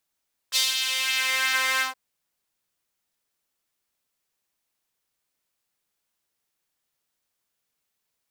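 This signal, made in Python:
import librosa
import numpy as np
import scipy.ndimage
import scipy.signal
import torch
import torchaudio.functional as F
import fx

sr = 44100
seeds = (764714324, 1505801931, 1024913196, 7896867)

y = fx.sub_patch_pwm(sr, seeds[0], note=72, wave2='saw', interval_st=0, detune_cents=16, level2_db=-9.0, sub_db=-1.5, noise_db=-30.0, kind='highpass', cutoff_hz=720.0, q=1.8, env_oct=2.5, env_decay_s=1.01, env_sustain_pct=50, attack_ms=39.0, decay_s=0.18, sustain_db=-7.0, release_s=0.14, note_s=1.28, lfo_hz=2.8, width_pct=22, width_swing_pct=17)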